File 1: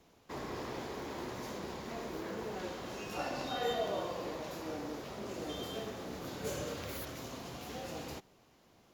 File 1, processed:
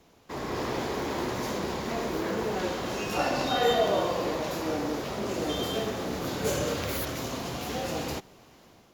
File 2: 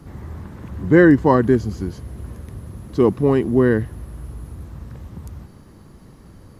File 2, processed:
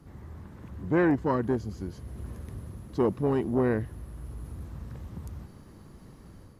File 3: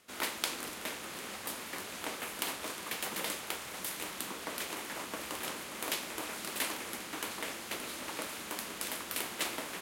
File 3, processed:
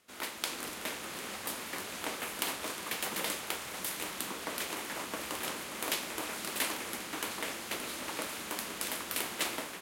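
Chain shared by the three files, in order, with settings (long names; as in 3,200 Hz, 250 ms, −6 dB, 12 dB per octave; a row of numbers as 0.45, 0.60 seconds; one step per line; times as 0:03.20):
automatic gain control gain up to 6 dB
saturating transformer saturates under 420 Hz
normalise the peak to −12 dBFS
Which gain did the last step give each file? +5.0, −10.5, −4.0 decibels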